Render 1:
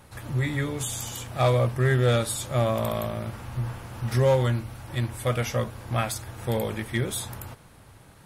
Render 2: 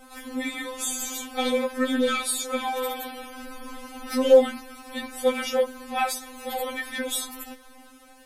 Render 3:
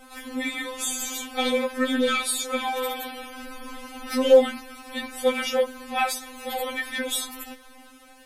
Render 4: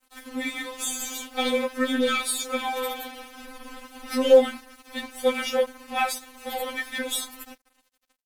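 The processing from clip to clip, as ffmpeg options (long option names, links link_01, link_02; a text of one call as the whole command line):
ffmpeg -i in.wav -af "acontrast=44,afftfilt=real='re*3.46*eq(mod(b,12),0)':imag='im*3.46*eq(mod(b,12),0)':win_size=2048:overlap=0.75" out.wav
ffmpeg -i in.wav -af "equalizer=frequency=2600:width_type=o:width=1.5:gain=3.5" out.wav
ffmpeg -i in.wav -af "aeval=exprs='sgn(val(0))*max(abs(val(0))-0.00668,0)':channel_layout=same" out.wav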